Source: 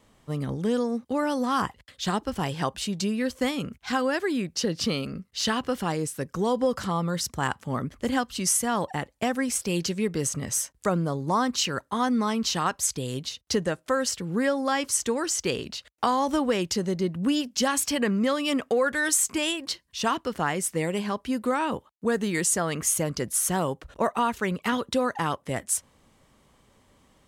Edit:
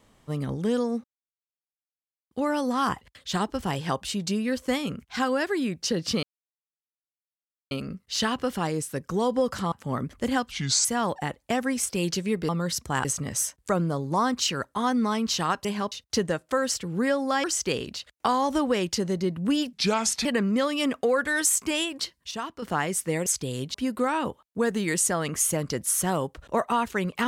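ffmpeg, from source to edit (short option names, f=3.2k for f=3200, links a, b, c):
-filter_complex "[0:a]asplit=17[a][b][c][d][e][f][g][h][i][j][k][l][m][n][o][p][q];[a]atrim=end=1.04,asetpts=PTS-STARTPTS,afade=t=out:st=1.036:d=0.004:c=hsin,apad=pad_dur=1.27[r];[b]atrim=start=1.04:end=4.96,asetpts=PTS-STARTPTS,afade=t=in:d=0.004:c=hsin,afade=t=out:st=3.916:d=0.004:c=hsin,apad=pad_dur=1.48[s];[c]atrim=start=4.96:end=6.972,asetpts=PTS-STARTPTS,afade=t=in:d=0.004:c=hsin[t];[d]atrim=start=7.528:end=8.324[u];[e]atrim=start=8.32:end=8.57,asetpts=PTS-STARTPTS,asetrate=32634,aresample=44100[v];[f]atrim=start=8.566:end=10.212[w];[g]atrim=start=6.968:end=7.532[x];[h]atrim=start=10.208:end=12.812[y];[i]atrim=start=20.938:end=21.212[z];[j]atrim=start=13.288:end=14.812[aa];[k]atrim=start=15.218:end=17.514[ab];[l]atrim=start=17.51:end=17.93,asetpts=PTS-STARTPTS,asetrate=35280,aresample=44100,atrim=end_sample=23152,asetpts=PTS-STARTPTS[ac];[m]atrim=start=17.926:end=19.992[ad];[n]atrim=start=19.988:end=20.302,asetpts=PTS-STARTPTS,volume=-8dB[ae];[o]atrim=start=20.298:end=20.942[af];[p]atrim=start=12.808:end=13.292[ag];[q]atrim=start=21.208[ah];[r][s][t]concat=n=3:v=0:a=1[ai];[ai][u]acrossfade=d=0.004:c1=hsin:c2=hsin[aj];[aj][v]acrossfade=d=0.004:c1=hsin:c2=hsin[ak];[ak][w]acrossfade=d=0.004:c1=hsin:c2=hsin[al];[al][x]acrossfade=d=0.004:c1=hsin:c2=hsin[am];[am][y]acrossfade=d=0.004:c1=hsin:c2=hsin[an];[an][z]acrossfade=d=0.004:c1=hsin:c2=hsin[ao];[ao][aa]acrossfade=d=0.004:c1=hsin:c2=hsin[ap];[ap][ab]acrossfade=d=0.004:c1=hsin:c2=hsin[aq];[aq][ac]acrossfade=d=0.004:c1=hsin:c2=hsin[ar];[ar][ad]acrossfade=d=0.004:c1=hsin:c2=hsin[as];[as][ae]acrossfade=d=0.004:c1=hsin:c2=hsin[at];[at][af]acrossfade=d=0.004:c1=hsin:c2=hsin[au];[au][ag]acrossfade=d=0.004:c1=hsin:c2=hsin[av];[av][ah]acrossfade=d=0.004:c1=hsin:c2=hsin"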